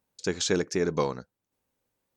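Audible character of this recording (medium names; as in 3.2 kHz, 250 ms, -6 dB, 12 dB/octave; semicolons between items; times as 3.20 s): noise floor -86 dBFS; spectral tilt -4.0 dB/octave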